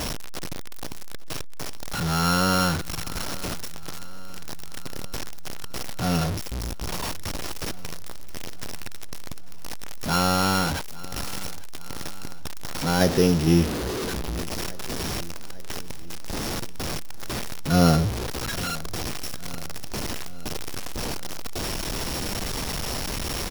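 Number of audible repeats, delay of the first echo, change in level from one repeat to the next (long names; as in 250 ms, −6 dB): 4, 848 ms, −4.5 dB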